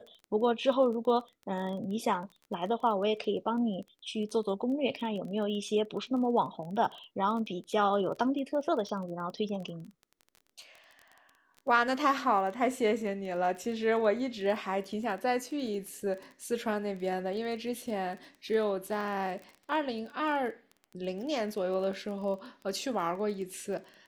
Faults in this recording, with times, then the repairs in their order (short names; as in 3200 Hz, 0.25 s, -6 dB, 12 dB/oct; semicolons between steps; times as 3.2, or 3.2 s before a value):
crackle 21/s -39 dBFS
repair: de-click